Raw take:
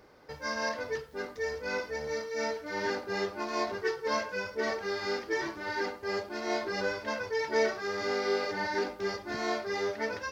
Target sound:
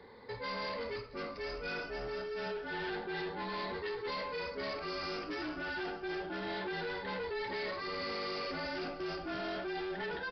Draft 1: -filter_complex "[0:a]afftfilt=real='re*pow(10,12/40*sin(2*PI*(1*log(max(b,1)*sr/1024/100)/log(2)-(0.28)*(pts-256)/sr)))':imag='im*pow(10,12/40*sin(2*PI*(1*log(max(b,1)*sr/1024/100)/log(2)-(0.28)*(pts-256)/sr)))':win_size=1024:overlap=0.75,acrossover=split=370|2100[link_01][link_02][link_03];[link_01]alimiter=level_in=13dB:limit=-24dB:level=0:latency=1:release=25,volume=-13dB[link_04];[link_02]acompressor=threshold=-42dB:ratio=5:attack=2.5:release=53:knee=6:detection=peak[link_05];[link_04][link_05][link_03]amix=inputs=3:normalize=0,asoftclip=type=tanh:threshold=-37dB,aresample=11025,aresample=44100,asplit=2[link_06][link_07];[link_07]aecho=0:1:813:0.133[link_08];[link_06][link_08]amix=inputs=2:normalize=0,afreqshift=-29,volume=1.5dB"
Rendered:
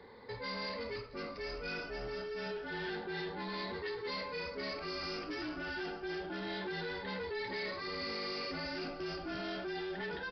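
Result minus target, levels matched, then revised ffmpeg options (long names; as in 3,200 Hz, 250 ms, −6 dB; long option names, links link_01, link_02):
downward compressor: peak gain reduction +7.5 dB
-filter_complex "[0:a]afftfilt=real='re*pow(10,12/40*sin(2*PI*(1*log(max(b,1)*sr/1024/100)/log(2)-(0.28)*(pts-256)/sr)))':imag='im*pow(10,12/40*sin(2*PI*(1*log(max(b,1)*sr/1024/100)/log(2)-(0.28)*(pts-256)/sr)))':win_size=1024:overlap=0.75,acrossover=split=370|2100[link_01][link_02][link_03];[link_01]alimiter=level_in=13dB:limit=-24dB:level=0:latency=1:release=25,volume=-13dB[link_04];[link_02]acompressor=threshold=-32.5dB:ratio=5:attack=2.5:release=53:knee=6:detection=peak[link_05];[link_04][link_05][link_03]amix=inputs=3:normalize=0,asoftclip=type=tanh:threshold=-37dB,aresample=11025,aresample=44100,asplit=2[link_06][link_07];[link_07]aecho=0:1:813:0.133[link_08];[link_06][link_08]amix=inputs=2:normalize=0,afreqshift=-29,volume=1.5dB"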